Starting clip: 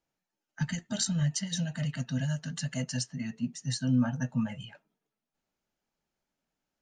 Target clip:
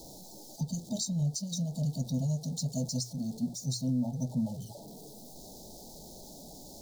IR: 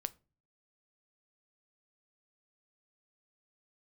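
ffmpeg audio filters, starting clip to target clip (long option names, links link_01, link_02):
-af "aeval=exprs='val(0)+0.5*0.01*sgn(val(0))':channel_layout=same,bandreject=frequency=60:width_type=h:width=6,bandreject=frequency=120:width_type=h:width=6,alimiter=limit=-22.5dB:level=0:latency=1:release=321,asuperstop=centerf=1800:order=12:qfactor=0.59"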